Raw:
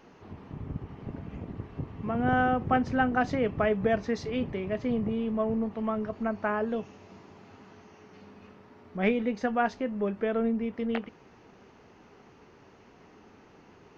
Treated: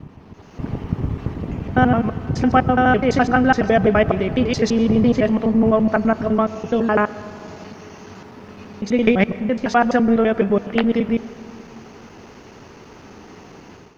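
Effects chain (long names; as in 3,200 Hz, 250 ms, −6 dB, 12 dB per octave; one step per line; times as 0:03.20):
slices reordered back to front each 84 ms, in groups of 7
bass and treble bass +2 dB, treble +7 dB
on a send at −16 dB: convolution reverb RT60 2.6 s, pre-delay 65 ms
on the sum: automatic gain control gain up to 13 dB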